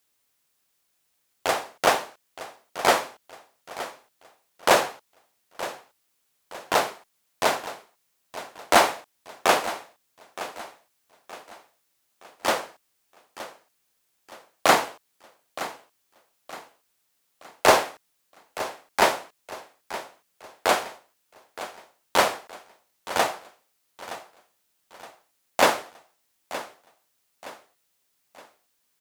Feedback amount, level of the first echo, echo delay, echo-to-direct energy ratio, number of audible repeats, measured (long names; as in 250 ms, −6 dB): 40%, −14.5 dB, 919 ms, −14.0 dB, 3